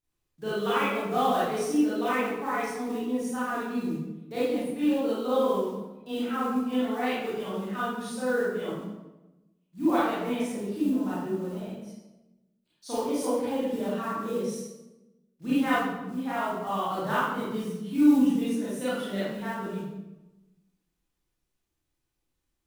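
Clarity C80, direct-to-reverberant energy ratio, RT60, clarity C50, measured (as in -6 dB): 1.5 dB, -11.0 dB, 1.0 s, -3.0 dB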